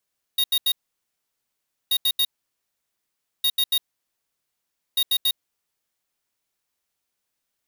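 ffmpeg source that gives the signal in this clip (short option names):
-f lavfi -i "aevalsrc='0.1*(2*lt(mod(3750*t,1),0.5)-1)*clip(min(mod(mod(t,1.53),0.14),0.06-mod(mod(t,1.53),0.14))/0.005,0,1)*lt(mod(t,1.53),0.42)':d=6.12:s=44100"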